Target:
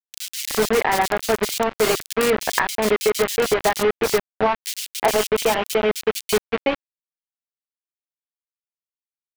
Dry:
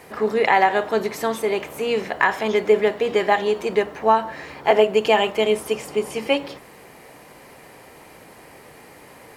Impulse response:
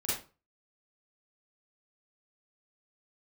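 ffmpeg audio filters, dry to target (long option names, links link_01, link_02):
-filter_complex "[0:a]acompressor=threshold=-19dB:ratio=16,acrusher=bits=3:mix=0:aa=0.000001,acrossover=split=3000[link_01][link_02];[link_01]adelay=370[link_03];[link_03][link_02]amix=inputs=2:normalize=0,volume=4dB"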